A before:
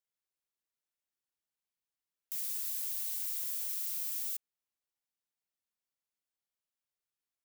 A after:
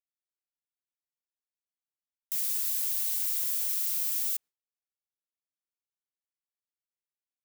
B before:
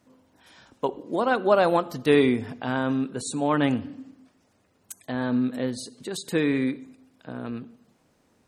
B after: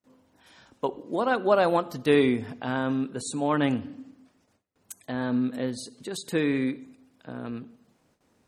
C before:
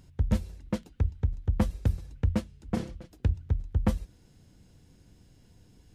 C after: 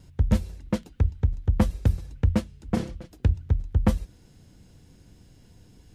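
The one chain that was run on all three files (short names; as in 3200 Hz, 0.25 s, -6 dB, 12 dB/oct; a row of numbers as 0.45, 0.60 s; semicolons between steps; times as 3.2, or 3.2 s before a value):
gate with hold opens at -55 dBFS; match loudness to -27 LUFS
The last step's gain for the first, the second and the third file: +7.0, -1.5, +4.5 dB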